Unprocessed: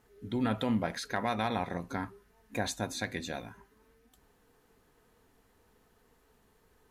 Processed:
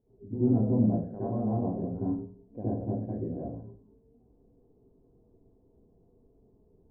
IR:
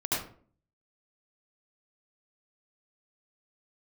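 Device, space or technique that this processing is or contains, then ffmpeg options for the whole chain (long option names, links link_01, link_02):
next room: -filter_complex "[0:a]lowpass=frequency=550:width=0.5412,lowpass=frequency=550:width=1.3066[link_01];[1:a]atrim=start_sample=2205[link_02];[link_01][link_02]afir=irnorm=-1:irlink=0,volume=-3.5dB"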